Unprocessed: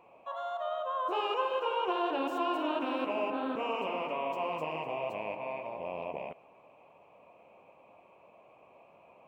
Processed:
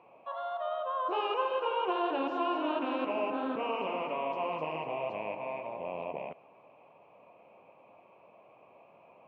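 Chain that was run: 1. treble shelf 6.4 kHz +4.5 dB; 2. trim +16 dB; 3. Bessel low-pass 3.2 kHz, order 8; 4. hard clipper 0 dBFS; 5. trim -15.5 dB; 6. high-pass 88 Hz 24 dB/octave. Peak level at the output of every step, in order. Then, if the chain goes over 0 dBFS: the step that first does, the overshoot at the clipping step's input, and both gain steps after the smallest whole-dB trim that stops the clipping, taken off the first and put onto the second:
-18.5 dBFS, -2.5 dBFS, -3.0 dBFS, -3.0 dBFS, -18.5 dBFS, -19.0 dBFS; nothing clips

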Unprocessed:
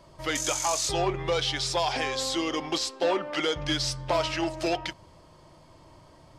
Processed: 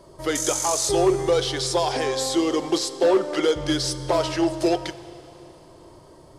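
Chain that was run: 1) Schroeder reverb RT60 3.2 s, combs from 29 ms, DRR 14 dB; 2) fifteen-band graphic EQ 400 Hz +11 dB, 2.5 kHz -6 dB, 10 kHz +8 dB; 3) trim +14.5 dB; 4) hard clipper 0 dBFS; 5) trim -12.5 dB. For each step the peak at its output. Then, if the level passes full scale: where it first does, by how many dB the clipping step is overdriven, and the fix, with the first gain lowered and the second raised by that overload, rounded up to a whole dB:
-13.0 dBFS, -8.0 dBFS, +6.5 dBFS, 0.0 dBFS, -12.5 dBFS; step 3, 6.5 dB; step 3 +7.5 dB, step 5 -5.5 dB

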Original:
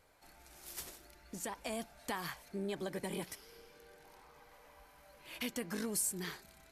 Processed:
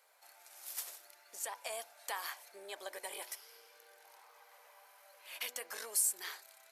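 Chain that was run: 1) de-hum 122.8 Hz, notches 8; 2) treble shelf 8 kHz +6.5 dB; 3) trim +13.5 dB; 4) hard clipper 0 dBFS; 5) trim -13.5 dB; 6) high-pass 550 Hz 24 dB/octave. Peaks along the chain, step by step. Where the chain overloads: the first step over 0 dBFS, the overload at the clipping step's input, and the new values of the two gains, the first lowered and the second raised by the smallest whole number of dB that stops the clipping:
-20.5 dBFS, -17.0 dBFS, -3.5 dBFS, -3.5 dBFS, -17.0 dBFS, -17.0 dBFS; nothing clips

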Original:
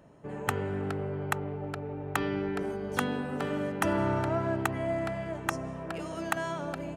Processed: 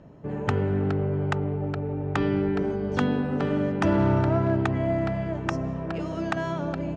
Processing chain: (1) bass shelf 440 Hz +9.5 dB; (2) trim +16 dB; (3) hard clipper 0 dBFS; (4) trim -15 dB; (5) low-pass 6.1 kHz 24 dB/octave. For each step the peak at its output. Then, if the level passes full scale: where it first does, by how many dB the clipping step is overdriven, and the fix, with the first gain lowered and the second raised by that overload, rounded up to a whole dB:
-8.5 dBFS, +7.5 dBFS, 0.0 dBFS, -15.0 dBFS, -14.0 dBFS; step 2, 7.5 dB; step 2 +8 dB, step 4 -7 dB

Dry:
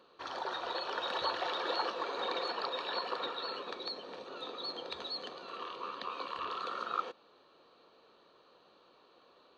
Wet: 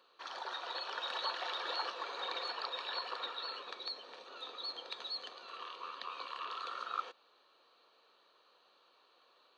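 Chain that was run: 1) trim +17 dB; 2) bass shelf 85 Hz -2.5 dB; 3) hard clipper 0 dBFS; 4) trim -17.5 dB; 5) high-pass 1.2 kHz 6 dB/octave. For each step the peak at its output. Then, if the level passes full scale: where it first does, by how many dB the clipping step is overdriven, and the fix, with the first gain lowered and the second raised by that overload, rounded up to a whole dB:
-4.0 dBFS, -4.0 dBFS, -4.0 dBFS, -21.5 dBFS, -23.5 dBFS; nothing clips

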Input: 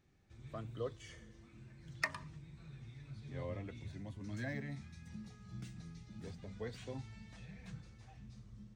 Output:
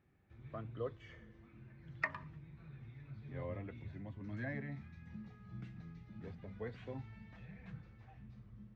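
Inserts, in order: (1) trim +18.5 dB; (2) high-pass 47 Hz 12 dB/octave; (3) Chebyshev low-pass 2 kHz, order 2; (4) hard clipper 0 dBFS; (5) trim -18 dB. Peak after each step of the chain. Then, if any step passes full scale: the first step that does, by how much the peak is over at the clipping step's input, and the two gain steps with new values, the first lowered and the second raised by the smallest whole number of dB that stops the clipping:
-1.0 dBFS, -1.0 dBFS, -2.0 dBFS, -2.0 dBFS, -20.0 dBFS; nothing clips

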